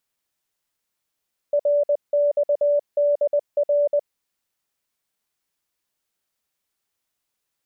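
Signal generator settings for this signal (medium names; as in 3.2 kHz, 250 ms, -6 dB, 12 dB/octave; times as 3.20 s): Morse "RXDR" 20 wpm 581 Hz -15.5 dBFS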